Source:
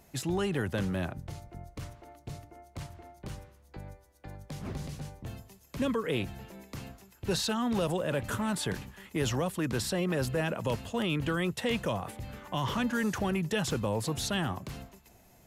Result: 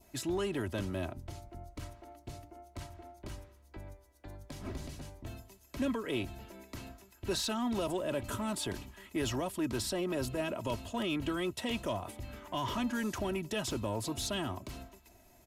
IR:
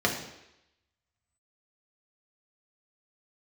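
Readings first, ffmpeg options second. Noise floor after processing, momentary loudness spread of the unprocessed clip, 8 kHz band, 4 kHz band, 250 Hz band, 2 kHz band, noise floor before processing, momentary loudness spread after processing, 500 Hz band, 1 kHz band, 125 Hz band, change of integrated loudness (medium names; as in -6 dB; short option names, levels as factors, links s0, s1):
-62 dBFS, 17 LU, -2.5 dB, -2.5 dB, -3.5 dB, -6.0 dB, -60 dBFS, 16 LU, -3.5 dB, -3.5 dB, -7.0 dB, -4.0 dB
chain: -filter_complex "[0:a]adynamicequalizer=threshold=0.002:dfrequency=1700:dqfactor=2.5:tfrequency=1700:tqfactor=2.5:attack=5:release=100:ratio=0.375:range=3.5:mode=cutabove:tftype=bell,aecho=1:1:3.1:0.59,asplit=2[s0][s1];[s1]asoftclip=type=hard:threshold=0.0299,volume=0.316[s2];[s0][s2]amix=inputs=2:normalize=0,volume=0.531"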